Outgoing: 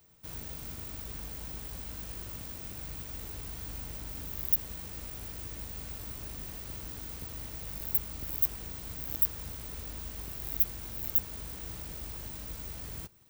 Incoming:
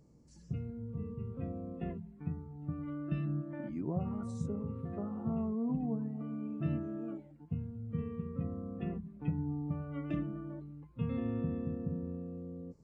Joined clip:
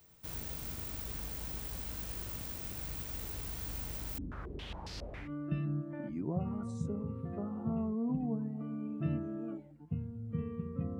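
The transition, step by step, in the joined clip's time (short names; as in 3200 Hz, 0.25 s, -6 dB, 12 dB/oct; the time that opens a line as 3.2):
outgoing
4.18–5.33 stepped low-pass 7.3 Hz 260–4800 Hz
5.26 switch to incoming from 2.86 s, crossfade 0.14 s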